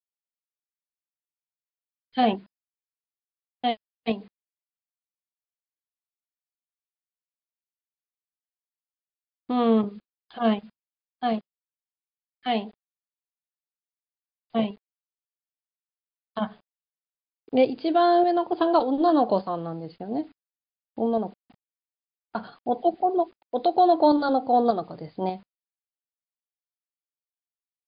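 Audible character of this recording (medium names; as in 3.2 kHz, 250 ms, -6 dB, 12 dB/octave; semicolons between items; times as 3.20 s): tremolo saw up 1.7 Hz, depth 45%; a quantiser's noise floor 10-bit, dither none; MP3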